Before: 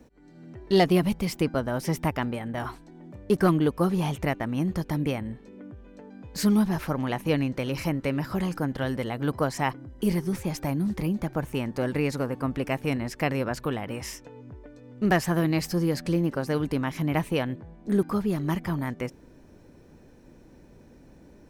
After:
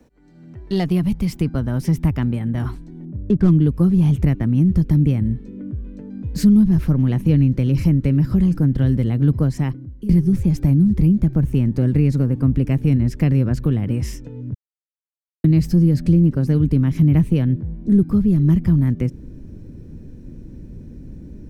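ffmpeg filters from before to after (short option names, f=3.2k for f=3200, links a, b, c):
-filter_complex "[0:a]asettb=1/sr,asplit=3[a][b][c];[a]atrim=end=3.054[d];[b]atrim=start=3.05:end=3.51,asetpts=PTS-STARTPTS,afade=t=in:d=0.004:c=qsin,afade=t=out:st=0.456:d=0.004:c=qsin,adynamicsmooth=sensitivity=3.5:basefreq=610[e];[c]atrim=start=3.506[f];[d][e]acrossfade=d=0.004:c1=hsin:c2=qsin[g];[g][f]acrossfade=d=0.004:c1=qsin:c2=hsin,asplit=4[h][i][j][k];[h]atrim=end=10.09,asetpts=PTS-STARTPTS,afade=t=out:st=9.37:d=0.72:silence=0.0944061[l];[i]atrim=start=10.09:end=14.54,asetpts=PTS-STARTPTS,afade=t=in:d=0.004:c=hsin:silence=0.0944061,afade=t=out:st=4.446:d=0.004:c=hsin[m];[j]atrim=start=14.54:end=15.44,asetpts=PTS-STARTPTS,volume=0[n];[k]atrim=start=15.44,asetpts=PTS-STARTPTS,afade=t=in:d=0.004:c=hsin[o];[l][m][n][o]concat=n=4:v=0:a=1,asubboost=boost=10:cutoff=250,acrossover=split=160[p][q];[q]acompressor=threshold=-22dB:ratio=2[r];[p][r]amix=inputs=2:normalize=0"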